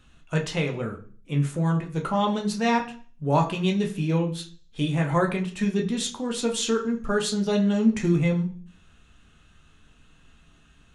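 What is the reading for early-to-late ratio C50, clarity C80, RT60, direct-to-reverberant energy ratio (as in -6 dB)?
12.0 dB, 16.0 dB, 0.45 s, 1.0 dB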